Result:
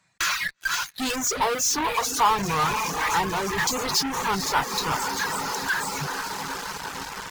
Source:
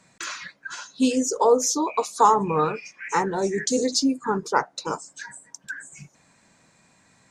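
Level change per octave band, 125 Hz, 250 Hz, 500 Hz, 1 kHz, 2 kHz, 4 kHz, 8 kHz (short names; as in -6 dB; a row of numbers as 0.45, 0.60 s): +2.0, -6.5, -7.5, 0.0, +7.5, +6.0, +2.5 dB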